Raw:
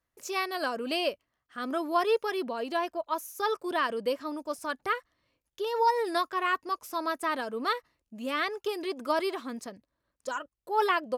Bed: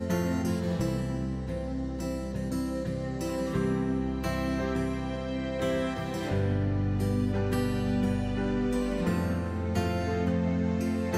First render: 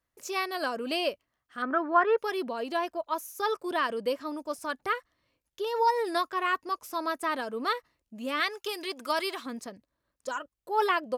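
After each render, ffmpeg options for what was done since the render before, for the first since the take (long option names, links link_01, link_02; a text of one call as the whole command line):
ffmpeg -i in.wav -filter_complex "[0:a]asettb=1/sr,asplit=3[link_01][link_02][link_03];[link_01]atrim=end=1.624[link_04];[link_02]atrim=start=1.62:end=2.18,asetpts=PTS-STARTPTS,afade=type=in:duration=0.004:curve=qsin,afade=type=out:start_time=0.556:duration=0.004:curve=qsin,lowpass=frequency=1600:width_type=q:width=3.6[link_05];[link_03]atrim=start=2.176[link_06];[link_04][link_05]acrossfade=duration=0.004:curve1=hsin:curve2=qsin[link_07];[link_07][link_06]acrossfade=duration=0.004:curve1=qsin:curve2=hsin,asettb=1/sr,asplit=3[link_08][link_09][link_10];[link_08]atrim=end=8.404[link_11];[link_09]atrim=start=8.4:end=9.46,asetpts=PTS-STARTPTS,afade=type=in:duration=0.004:curve=qsin,afade=type=out:start_time=1.056:duration=0.004:curve=qsin,tiltshelf=frequency=1100:gain=-6[link_12];[link_10]atrim=start=9.456[link_13];[link_11][link_12]acrossfade=duration=0.004:curve1=hsin:curve2=qsin[link_14];[link_14][link_13]acrossfade=duration=0.004:curve1=qsin:curve2=hsin" out.wav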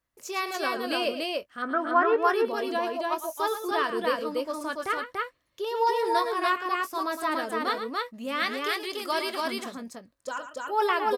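ffmpeg -i in.wav -filter_complex "[0:a]asplit=2[link_01][link_02];[link_02]adelay=22,volume=-13dB[link_03];[link_01][link_03]amix=inputs=2:normalize=0,asplit=2[link_04][link_05];[link_05]aecho=0:1:110.8|288.6:0.316|0.794[link_06];[link_04][link_06]amix=inputs=2:normalize=0" out.wav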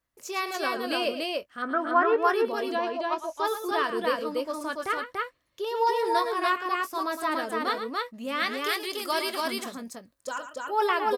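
ffmpeg -i in.wav -filter_complex "[0:a]asettb=1/sr,asplit=3[link_01][link_02][link_03];[link_01]atrim=end=2.754[link_04];[link_02]atrim=start=2.75:end=3.45,asetpts=PTS-STARTPTS,afade=type=in:duration=0.004:curve=qsin,afade=type=out:start_time=0.696:duration=0.004:curve=qsin,lowpass=5600[link_05];[link_03]atrim=start=3.446[link_06];[link_04][link_05]acrossfade=duration=0.004:curve1=hsin:curve2=qsin[link_07];[link_07][link_06]acrossfade=duration=0.004:curve1=qsin:curve2=hsin,asettb=1/sr,asplit=3[link_08][link_09][link_10];[link_08]atrim=end=8.594[link_11];[link_09]atrim=start=8.59:end=10.54,asetpts=PTS-STARTPTS,afade=type=in:duration=0.004:curve=qsin,afade=type=out:start_time=1.946:duration=0.004:curve=qsin,highshelf=frequency=6800:gain=7[link_12];[link_10]atrim=start=10.536[link_13];[link_11][link_12]acrossfade=duration=0.004:curve1=hsin:curve2=qsin[link_14];[link_14][link_13]acrossfade=duration=0.004:curve1=qsin:curve2=hsin" out.wav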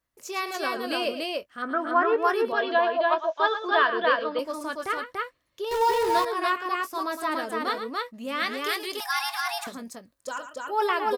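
ffmpeg -i in.wav -filter_complex "[0:a]asettb=1/sr,asplit=3[link_01][link_02][link_03];[link_01]atrim=end=2.524[link_04];[link_02]atrim=start=2.52:end=4.39,asetpts=PTS-STARTPTS,afade=type=in:duration=0.004:curve=qsin,afade=type=out:start_time=1.866:duration=0.004:curve=qsin,highpass=270,equalizer=frequency=650:width_type=q:width=4:gain=8,equalizer=frequency=1100:width_type=q:width=4:gain=5,equalizer=frequency=1600:width_type=q:width=4:gain=10,equalizer=frequency=3400:width_type=q:width=4:gain=8,lowpass=frequency=4400:width=0.5412,lowpass=frequency=4400:width=1.3066[link_05];[link_03]atrim=start=4.386[link_06];[link_04][link_05]acrossfade=duration=0.004:curve1=hsin:curve2=qsin[link_07];[link_07][link_06]acrossfade=duration=0.004:curve1=qsin:curve2=hsin,asettb=1/sr,asplit=3[link_08][link_09][link_10];[link_08]atrim=end=5.714[link_11];[link_09]atrim=start=5.71:end=6.25,asetpts=PTS-STARTPTS,afade=type=in:duration=0.004:curve=qsin,afade=type=out:start_time=0.536:duration=0.004:curve=qsin,aeval=exprs='val(0)+0.5*0.0376*sgn(val(0))':channel_layout=same[link_12];[link_10]atrim=start=6.246[link_13];[link_11][link_12]acrossfade=duration=0.004:curve1=hsin:curve2=qsin[link_14];[link_14][link_13]acrossfade=duration=0.004:curve1=qsin:curve2=hsin,asettb=1/sr,asplit=3[link_15][link_16][link_17];[link_15]atrim=end=9.004[link_18];[link_16]atrim=start=9:end=9.67,asetpts=PTS-STARTPTS,afade=type=in:duration=0.004:curve=qsin,afade=type=out:start_time=0.666:duration=0.004:curve=qsin,afreqshift=460[link_19];[link_17]atrim=start=9.666[link_20];[link_18][link_19]acrossfade=duration=0.004:curve1=hsin:curve2=qsin[link_21];[link_21][link_20]acrossfade=duration=0.004:curve1=qsin:curve2=hsin" out.wav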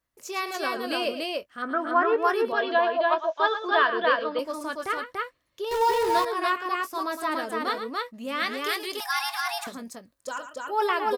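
ffmpeg -i in.wav -af anull out.wav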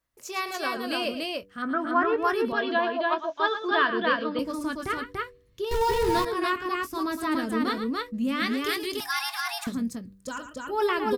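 ffmpeg -i in.wav -af "bandreject=frequency=97.19:width_type=h:width=4,bandreject=frequency=194.38:width_type=h:width=4,bandreject=frequency=291.57:width_type=h:width=4,bandreject=frequency=388.76:width_type=h:width=4,bandreject=frequency=485.95:width_type=h:width=4,asubboost=boost=11:cutoff=190" out.wav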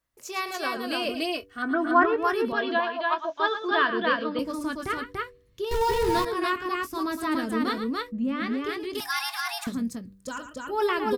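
ffmpeg -i in.wav -filter_complex "[0:a]asettb=1/sr,asplit=3[link_01][link_02][link_03];[link_01]atrim=end=1.094[link_04];[link_02]atrim=start=1.09:end=2.06,asetpts=PTS-STARTPTS,afade=type=in:duration=0.004:curve=qsin,afade=type=out:start_time=0.966:duration=0.004:curve=qsin,aecho=1:1:2.7:0.94,atrim=end_sample=42777[link_05];[link_03]atrim=start=2.056[link_06];[link_04][link_05]acrossfade=duration=0.004:curve1=hsin:curve2=qsin[link_07];[link_07][link_06]acrossfade=duration=0.004:curve1=qsin:curve2=hsin,asettb=1/sr,asplit=3[link_08][link_09][link_10];[link_08]atrim=end=2.804[link_11];[link_09]atrim=start=2.8:end=3.25,asetpts=PTS-STARTPTS,afade=type=in:duration=0.004:curve=qsin,afade=type=out:start_time=0.446:duration=0.004:curve=qsin,lowshelf=frequency=670:width_type=q:width=1.5:gain=-6[link_12];[link_10]atrim=start=3.246[link_13];[link_11][link_12]acrossfade=duration=0.004:curve1=hsin:curve2=qsin[link_14];[link_14][link_13]acrossfade=duration=0.004:curve1=qsin:curve2=hsin,asettb=1/sr,asplit=3[link_15][link_16][link_17];[link_15]atrim=end=8.124[link_18];[link_16]atrim=start=8.12:end=8.95,asetpts=PTS-STARTPTS,afade=type=in:duration=0.004:curve=qsin,afade=type=out:start_time=0.826:duration=0.004:curve=qsin,lowpass=frequency=1300:poles=1[link_19];[link_17]atrim=start=8.946[link_20];[link_18][link_19]acrossfade=duration=0.004:curve1=hsin:curve2=qsin[link_21];[link_21][link_20]acrossfade=duration=0.004:curve1=qsin:curve2=hsin" out.wav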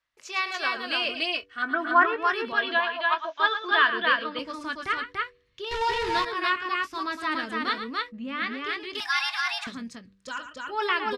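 ffmpeg -i in.wav -af "lowpass=3200,tiltshelf=frequency=970:gain=-10" out.wav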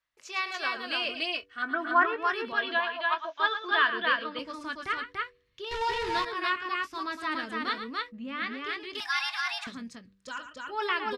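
ffmpeg -i in.wav -af "volume=-3.5dB" out.wav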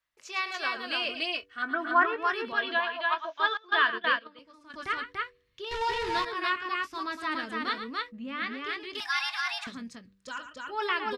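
ffmpeg -i in.wav -filter_complex "[0:a]asettb=1/sr,asplit=3[link_01][link_02][link_03];[link_01]atrim=end=3.574[link_04];[link_02]atrim=start=3.57:end=4.74,asetpts=PTS-STARTPTS,afade=type=in:duration=0.004:curve=qsin,afade=type=out:start_time=1.166:duration=0.004:curve=qsin,agate=range=-16dB:threshold=-32dB:ratio=16:release=100:detection=peak[link_05];[link_03]atrim=start=4.736[link_06];[link_04][link_05]acrossfade=duration=0.004:curve1=hsin:curve2=qsin[link_07];[link_07][link_06]acrossfade=duration=0.004:curve1=qsin:curve2=hsin" out.wav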